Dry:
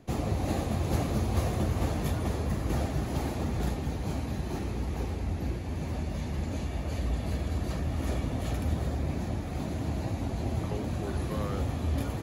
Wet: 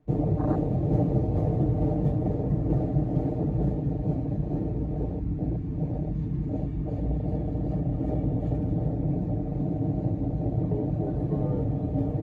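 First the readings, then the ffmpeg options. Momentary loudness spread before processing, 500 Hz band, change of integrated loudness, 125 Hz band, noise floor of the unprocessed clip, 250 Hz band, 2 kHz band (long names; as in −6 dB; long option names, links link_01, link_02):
5 LU, +4.0 dB, +4.0 dB, +5.0 dB, −35 dBFS, +6.0 dB, below −10 dB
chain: -af "lowpass=frequency=1100:poles=1,afwtdn=0.0251,aecho=1:1:6.6:0.79,areverse,acompressor=mode=upward:threshold=-31dB:ratio=2.5,areverse,volume=4.5dB"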